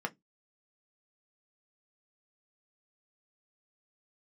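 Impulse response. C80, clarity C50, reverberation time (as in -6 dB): 39.5 dB, 28.0 dB, 0.15 s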